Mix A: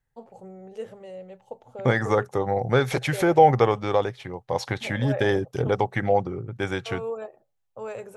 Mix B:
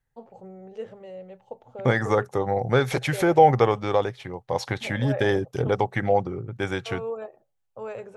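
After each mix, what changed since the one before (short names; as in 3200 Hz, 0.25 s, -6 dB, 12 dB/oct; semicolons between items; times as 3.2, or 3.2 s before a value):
first voice: add air absorption 97 m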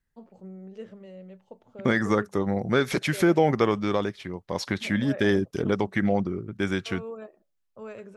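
first voice -3.0 dB; master: add thirty-one-band EQ 125 Hz -11 dB, 200 Hz +10 dB, 315 Hz +4 dB, 500 Hz -6 dB, 800 Hz -11 dB, 5000 Hz +3 dB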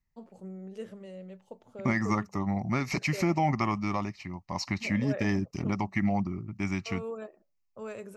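first voice: remove air absorption 97 m; second voice: add fixed phaser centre 2300 Hz, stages 8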